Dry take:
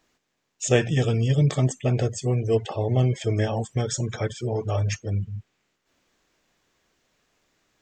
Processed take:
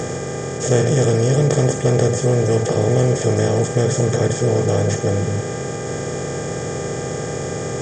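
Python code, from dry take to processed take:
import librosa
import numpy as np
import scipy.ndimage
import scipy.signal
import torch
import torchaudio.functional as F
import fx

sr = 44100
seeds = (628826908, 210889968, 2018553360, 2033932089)

y = fx.bin_compress(x, sr, power=0.2)
y = fx.peak_eq(y, sr, hz=2700.0, db=-7.5, octaves=1.9)
y = fx.dmg_buzz(y, sr, base_hz=400.0, harmonics=6, level_db=-34.0, tilt_db=-5, odd_only=False)
y = fx.notch(y, sr, hz=2600.0, q=6.5)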